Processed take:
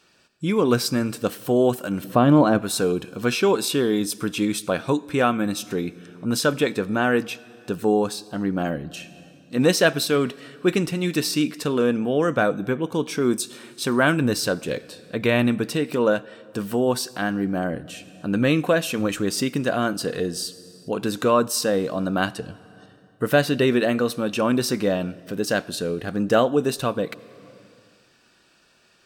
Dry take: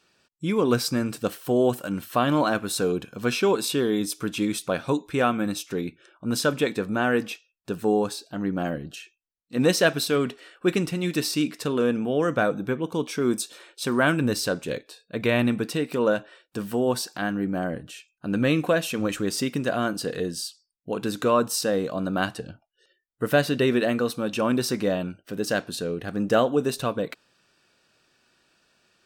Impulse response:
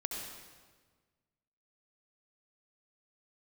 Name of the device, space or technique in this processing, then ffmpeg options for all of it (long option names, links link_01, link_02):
ducked reverb: -filter_complex "[0:a]asplit=3[link_01][link_02][link_03];[1:a]atrim=start_sample=2205[link_04];[link_02][link_04]afir=irnorm=-1:irlink=0[link_05];[link_03]apad=whole_len=1281214[link_06];[link_05][link_06]sidechaincompress=threshold=-38dB:ratio=8:attack=11:release=535,volume=-5dB[link_07];[link_01][link_07]amix=inputs=2:normalize=0,asettb=1/sr,asplit=3[link_08][link_09][link_10];[link_08]atrim=end=2.044[link_11];[link_09]atrim=start=2.04:end=2.62,asetpts=PTS-STARTPTS,afade=type=in:duration=0.004:curve=qsin,afade=type=out:start_time=0.576:duration=0.004:curve=qsin,tiltshelf=frequency=940:gain=7[link_12];[link_10]atrim=start=2.616[link_13];[link_11][link_12]acrossfade=duration=0.004:curve1=hsin:curve2=qsin[link_14];[link_14][link_13]acrossfade=duration=0.004:curve1=qsin:curve2=hsin,volume=2dB"